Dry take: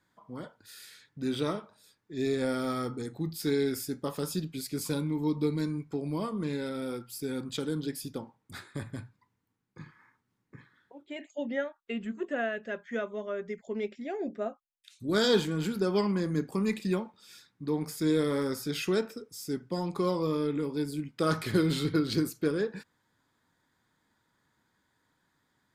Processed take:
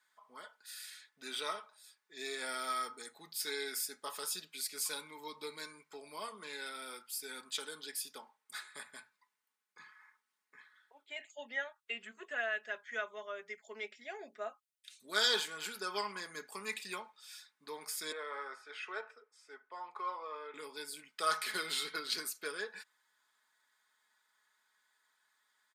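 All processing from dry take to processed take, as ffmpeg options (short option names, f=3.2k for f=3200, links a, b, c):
-filter_complex "[0:a]asettb=1/sr,asplit=3[a][b][c];[a]atrim=end=18.124[d];[b]atrim=start=18.12:end=20.54,asetpts=PTS-STARTPTS,afade=t=in:d=0.004:c=qsin,afade=t=out:st=2.416:d=0.004:c=qsin,lowpass=f=8.7k:w=0.5412,lowpass=f=8.7k:w=1.3066,acrossover=split=400 2200:gain=0.0794 1 0.0708[e][f][g];[e][f][g]amix=inputs=3:normalize=0[h];[c]atrim=start=20.536[i];[d][h]acrossfade=d=0.004:c1=hsin:c2=qsin[j];[j][i]acrossfade=d=0.004:c1=qsin:c2=hsin,highpass=1.1k,equalizer=f=8.9k:w=6.9:g=5.5,aecho=1:1:4.7:0.46"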